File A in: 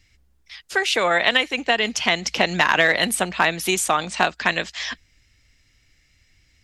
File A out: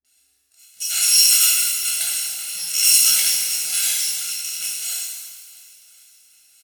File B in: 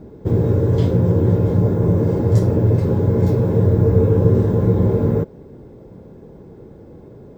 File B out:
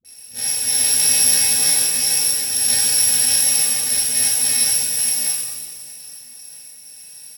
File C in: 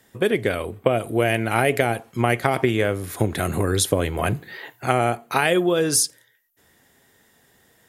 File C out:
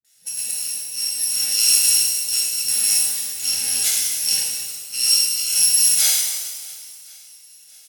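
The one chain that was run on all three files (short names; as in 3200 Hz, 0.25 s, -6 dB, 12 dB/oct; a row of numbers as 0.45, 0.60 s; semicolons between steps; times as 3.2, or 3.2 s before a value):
FFT order left unsorted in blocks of 128 samples; LPF 7900 Hz 12 dB/oct; low shelf 110 Hz +5 dB; notches 50/100/150 Hz; auto swell 0.187 s; Butterworth band-stop 1100 Hz, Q 2.3; differentiator; doubler 29 ms -11 dB; dispersion highs, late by 47 ms, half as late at 320 Hz; on a send: swung echo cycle 1.06 s, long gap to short 1.5:1, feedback 35%, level -23 dB; on the sum: shimmer reverb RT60 1.4 s, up +7 st, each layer -8 dB, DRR -5.5 dB; gain +4 dB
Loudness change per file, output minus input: +4.0, +2.5, +5.5 LU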